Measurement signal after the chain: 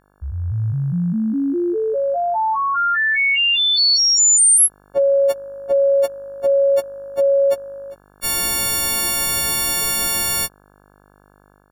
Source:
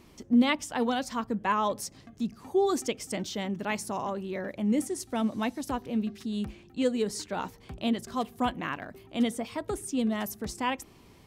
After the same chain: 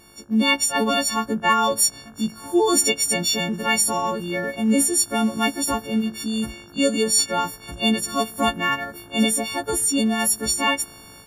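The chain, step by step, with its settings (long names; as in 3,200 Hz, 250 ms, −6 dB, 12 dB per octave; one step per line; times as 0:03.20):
every partial snapped to a pitch grid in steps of 4 semitones
hum with harmonics 50 Hz, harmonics 34, −60 dBFS −2 dB per octave
automatic gain control gain up to 7 dB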